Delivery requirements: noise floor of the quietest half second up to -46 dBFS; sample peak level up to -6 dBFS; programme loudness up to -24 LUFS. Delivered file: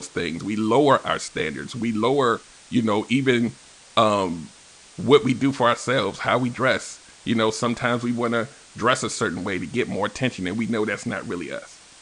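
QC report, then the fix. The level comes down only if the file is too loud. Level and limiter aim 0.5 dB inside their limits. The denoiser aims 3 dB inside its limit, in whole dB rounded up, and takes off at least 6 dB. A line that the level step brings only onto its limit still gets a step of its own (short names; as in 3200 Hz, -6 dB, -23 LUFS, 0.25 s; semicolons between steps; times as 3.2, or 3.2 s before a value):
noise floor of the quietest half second -49 dBFS: OK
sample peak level -3.5 dBFS: fail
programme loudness -22.5 LUFS: fail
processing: gain -2 dB; limiter -6.5 dBFS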